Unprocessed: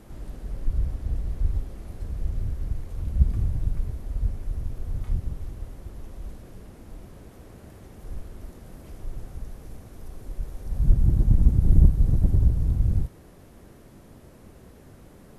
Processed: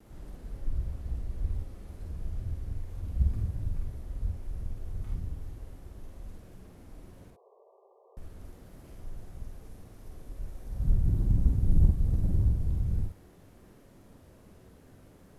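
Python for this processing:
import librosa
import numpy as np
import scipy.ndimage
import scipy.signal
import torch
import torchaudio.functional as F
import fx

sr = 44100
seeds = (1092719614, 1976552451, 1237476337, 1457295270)

p1 = fx.dead_time(x, sr, dead_ms=0.069)
p2 = fx.brickwall_bandpass(p1, sr, low_hz=370.0, high_hz=1200.0, at=(7.3, 8.17))
p3 = p2 + fx.room_early_taps(p2, sr, ms=(48, 59), db=(-3.5, -7.5), dry=0)
p4 = fx.vibrato(p3, sr, rate_hz=0.39, depth_cents=15.0)
y = p4 * 10.0 ** (-8.0 / 20.0)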